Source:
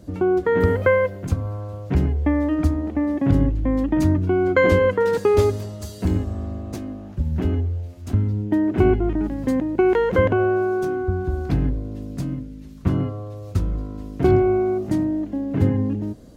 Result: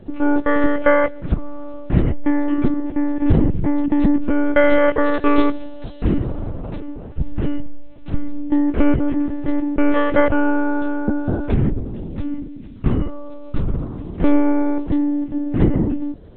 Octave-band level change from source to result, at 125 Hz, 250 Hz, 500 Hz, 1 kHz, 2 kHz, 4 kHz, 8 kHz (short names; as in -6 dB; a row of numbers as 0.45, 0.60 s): -2.0 dB, +4.0 dB, -1.5 dB, +3.0 dB, +3.0 dB, +1.5 dB, n/a